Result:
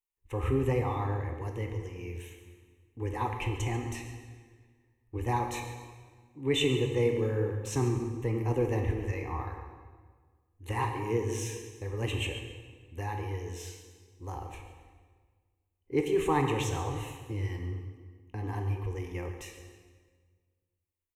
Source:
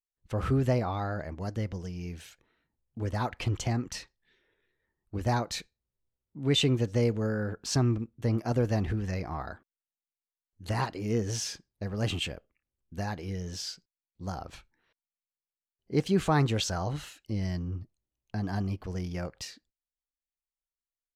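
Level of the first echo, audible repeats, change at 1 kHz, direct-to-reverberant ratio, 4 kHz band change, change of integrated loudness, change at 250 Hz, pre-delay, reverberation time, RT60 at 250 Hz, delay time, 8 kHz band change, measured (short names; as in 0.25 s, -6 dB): -14.5 dB, 1, +1.0 dB, 3.5 dB, -4.5 dB, -1.0 dB, -3.0 dB, 12 ms, 1.6 s, 1.8 s, 0.139 s, -3.5 dB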